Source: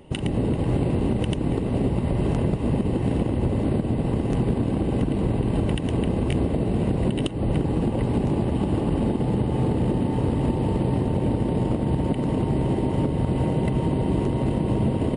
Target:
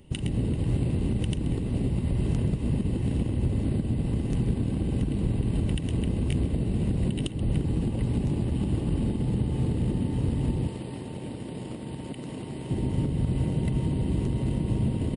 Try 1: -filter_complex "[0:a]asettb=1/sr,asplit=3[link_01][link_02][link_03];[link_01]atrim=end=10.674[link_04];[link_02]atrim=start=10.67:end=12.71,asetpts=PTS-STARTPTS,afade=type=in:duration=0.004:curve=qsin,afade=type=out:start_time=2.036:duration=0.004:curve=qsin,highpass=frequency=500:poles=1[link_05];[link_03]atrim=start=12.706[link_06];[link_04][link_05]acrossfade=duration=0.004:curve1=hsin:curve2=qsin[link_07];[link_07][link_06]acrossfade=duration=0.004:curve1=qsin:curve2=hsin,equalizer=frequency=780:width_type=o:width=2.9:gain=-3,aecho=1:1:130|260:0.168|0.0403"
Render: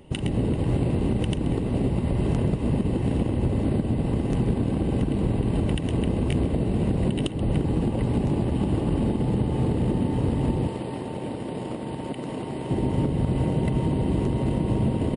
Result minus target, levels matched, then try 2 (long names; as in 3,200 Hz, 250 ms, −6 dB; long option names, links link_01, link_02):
1,000 Hz band +7.0 dB
-filter_complex "[0:a]asettb=1/sr,asplit=3[link_01][link_02][link_03];[link_01]atrim=end=10.674[link_04];[link_02]atrim=start=10.67:end=12.71,asetpts=PTS-STARTPTS,afade=type=in:duration=0.004:curve=qsin,afade=type=out:start_time=2.036:duration=0.004:curve=qsin,highpass=frequency=500:poles=1[link_05];[link_03]atrim=start=12.706[link_06];[link_04][link_05]acrossfade=duration=0.004:curve1=hsin:curve2=qsin[link_07];[link_07][link_06]acrossfade=duration=0.004:curve1=qsin:curve2=hsin,equalizer=frequency=780:width_type=o:width=2.9:gain=-13,aecho=1:1:130|260:0.168|0.0403"